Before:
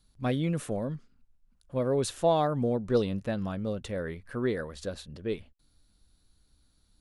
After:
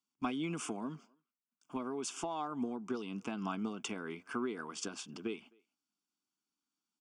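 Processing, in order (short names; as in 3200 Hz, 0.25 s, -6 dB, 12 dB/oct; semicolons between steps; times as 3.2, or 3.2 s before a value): HPF 250 Hz 24 dB/oct; gate with hold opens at -51 dBFS; compressor 10:1, threshold -36 dBFS, peak gain reduction 17 dB; fixed phaser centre 2700 Hz, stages 8; speakerphone echo 0.26 s, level -28 dB; gain +8.5 dB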